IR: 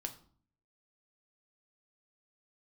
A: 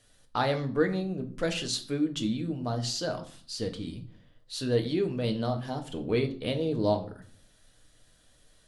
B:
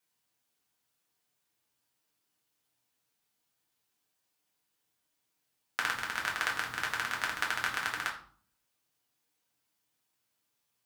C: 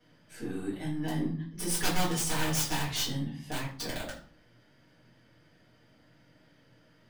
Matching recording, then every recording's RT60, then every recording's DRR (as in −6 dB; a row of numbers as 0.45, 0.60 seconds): A; 0.50, 0.50, 0.50 seconds; 5.0, −2.0, −9.5 decibels